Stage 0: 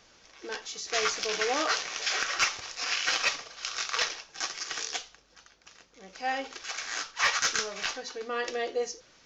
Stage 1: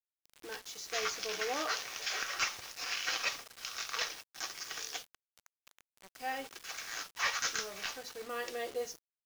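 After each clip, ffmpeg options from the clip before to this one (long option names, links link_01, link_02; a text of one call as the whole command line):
ffmpeg -i in.wav -af "acrusher=bits=6:mix=0:aa=0.000001,volume=-7dB" out.wav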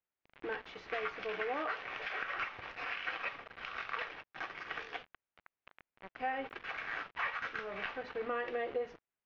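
ffmpeg -i in.wav -af "acompressor=threshold=-40dB:ratio=6,lowpass=frequency=2500:width=0.5412,lowpass=frequency=2500:width=1.3066,volume=7.5dB" out.wav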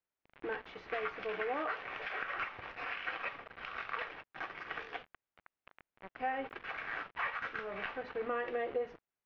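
ffmpeg -i in.wav -af "highshelf=frequency=4700:gain=-11.5,volume=1dB" out.wav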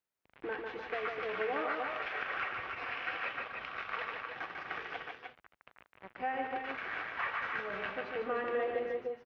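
ffmpeg -i in.wav -af "highpass=45,aecho=1:1:147|299|307:0.596|0.447|0.335" out.wav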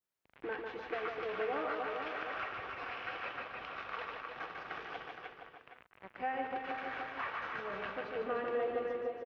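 ffmpeg -i in.wav -filter_complex "[0:a]adynamicequalizer=threshold=0.00316:dfrequency=2000:dqfactor=1.5:tfrequency=2000:tqfactor=1.5:attack=5:release=100:ratio=0.375:range=3:mode=cutabove:tftype=bell,asplit=2[link_01][link_02];[link_02]adelay=466.5,volume=-7dB,highshelf=frequency=4000:gain=-10.5[link_03];[link_01][link_03]amix=inputs=2:normalize=0,volume=-1dB" out.wav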